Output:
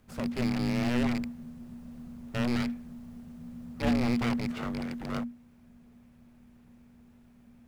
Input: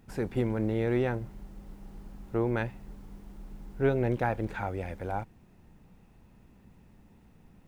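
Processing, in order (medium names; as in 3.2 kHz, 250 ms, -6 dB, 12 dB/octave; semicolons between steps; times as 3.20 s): rattle on loud lows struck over -32 dBFS, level -24 dBFS; full-wave rectifier; frequency shift -240 Hz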